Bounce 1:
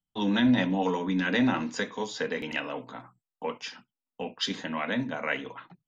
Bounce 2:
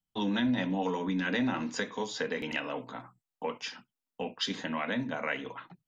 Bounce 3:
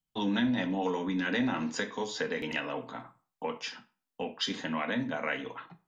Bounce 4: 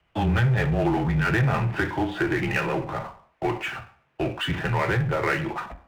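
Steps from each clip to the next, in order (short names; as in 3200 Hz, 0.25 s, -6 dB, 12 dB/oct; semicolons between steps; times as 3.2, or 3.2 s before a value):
compressor 2:1, threshold -30 dBFS, peak gain reduction 7 dB
reverb RT60 0.40 s, pre-delay 5 ms, DRR 9.5 dB
mistuned SSB -120 Hz 180–2800 Hz; power-law curve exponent 0.7; gain +5.5 dB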